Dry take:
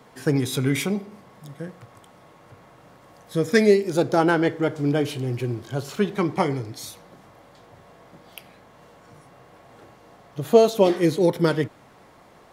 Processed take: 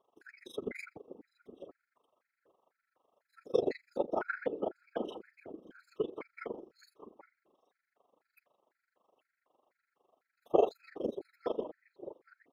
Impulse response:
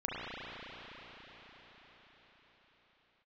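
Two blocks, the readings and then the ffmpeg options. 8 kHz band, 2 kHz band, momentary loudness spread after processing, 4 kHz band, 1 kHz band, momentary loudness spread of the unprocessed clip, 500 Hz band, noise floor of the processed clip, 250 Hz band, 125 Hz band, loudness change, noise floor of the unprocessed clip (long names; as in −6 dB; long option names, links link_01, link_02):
below −25 dB, −16.5 dB, 22 LU, −21.5 dB, −13.5 dB, 18 LU, −14.0 dB, below −85 dBFS, −20.0 dB, −31.0 dB, −14.5 dB, −52 dBFS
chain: -filter_complex "[0:a]highpass=frequency=350:width=0.5412,highpass=frequency=350:width=1.3066,afftdn=noise_reduction=12:noise_floor=-35,equalizer=frequency=8800:width_type=o:width=2.1:gain=-13,afftfilt=real='hypot(re,im)*cos(2*PI*random(0))':imag='hypot(re,im)*sin(2*PI*random(1))':win_size=512:overlap=0.75,tremolo=f=24:d=0.889,asplit=2[link_01][link_02];[link_02]adelay=816.3,volume=-15dB,highshelf=frequency=4000:gain=-18.4[link_03];[link_01][link_03]amix=inputs=2:normalize=0,afftfilt=real='re*gt(sin(2*PI*2*pts/sr)*(1-2*mod(floor(b*sr/1024/1300),2)),0)':imag='im*gt(sin(2*PI*2*pts/sr)*(1-2*mod(floor(b*sr/1024/1300),2)),0)':win_size=1024:overlap=0.75"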